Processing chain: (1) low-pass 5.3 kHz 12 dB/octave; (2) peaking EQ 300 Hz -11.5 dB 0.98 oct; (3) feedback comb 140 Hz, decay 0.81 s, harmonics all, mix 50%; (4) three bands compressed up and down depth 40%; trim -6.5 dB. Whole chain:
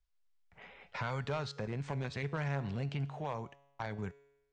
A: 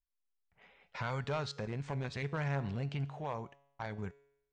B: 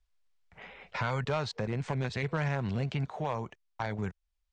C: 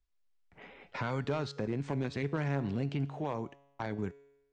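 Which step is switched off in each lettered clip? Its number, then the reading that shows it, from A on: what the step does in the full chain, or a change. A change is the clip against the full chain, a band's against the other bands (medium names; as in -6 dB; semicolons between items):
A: 4, crest factor change -3.0 dB; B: 3, loudness change +5.0 LU; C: 2, 250 Hz band +5.5 dB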